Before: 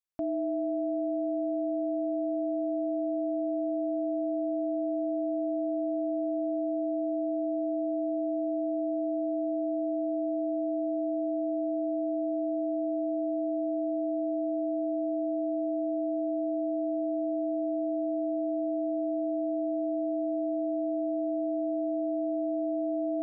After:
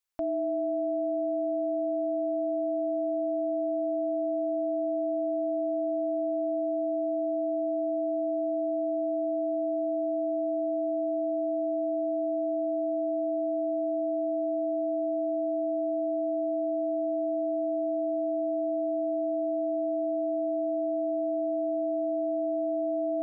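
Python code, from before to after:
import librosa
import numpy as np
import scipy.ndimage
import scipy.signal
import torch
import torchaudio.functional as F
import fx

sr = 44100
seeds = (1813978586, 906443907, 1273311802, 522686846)

y = fx.peak_eq(x, sr, hz=180.0, db=-11.0, octaves=2.5)
y = y * librosa.db_to_amplitude(6.0)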